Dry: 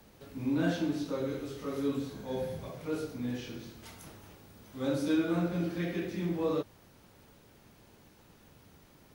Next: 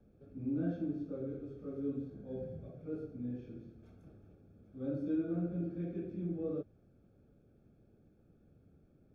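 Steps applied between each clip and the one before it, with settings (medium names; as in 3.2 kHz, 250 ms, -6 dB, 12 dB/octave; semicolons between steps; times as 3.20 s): boxcar filter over 45 samples; trim -4 dB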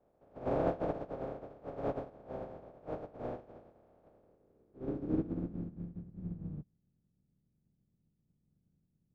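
spectral contrast reduction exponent 0.13; low-pass sweep 620 Hz -> 170 Hz, 4.06–6.02 s; upward expansion 1.5:1, over -55 dBFS; trim +8 dB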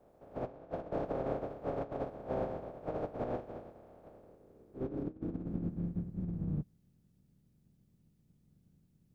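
compressor with a negative ratio -41 dBFS, ratio -0.5; trim +4.5 dB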